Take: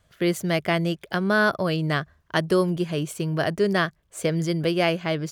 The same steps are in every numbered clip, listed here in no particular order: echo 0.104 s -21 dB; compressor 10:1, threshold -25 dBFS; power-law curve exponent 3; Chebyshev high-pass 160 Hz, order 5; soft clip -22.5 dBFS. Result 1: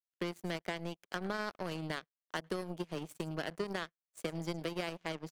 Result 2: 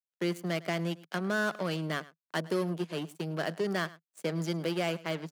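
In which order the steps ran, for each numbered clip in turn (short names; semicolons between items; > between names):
Chebyshev high-pass > compressor > soft clip > echo > power-law curve; soft clip > power-law curve > echo > compressor > Chebyshev high-pass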